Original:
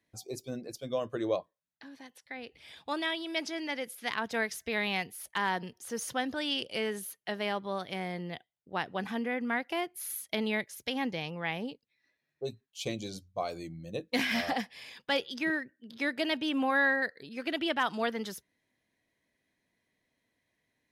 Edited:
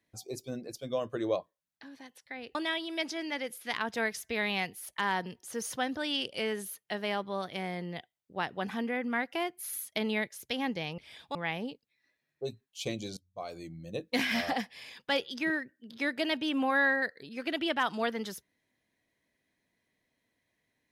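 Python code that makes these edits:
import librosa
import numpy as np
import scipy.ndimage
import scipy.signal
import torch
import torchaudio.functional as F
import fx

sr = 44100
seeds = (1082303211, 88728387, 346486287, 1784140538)

y = fx.edit(x, sr, fx.move(start_s=2.55, length_s=0.37, to_s=11.35),
    fx.fade_in_from(start_s=13.17, length_s=0.89, curve='qsin', floor_db=-20.5), tone=tone)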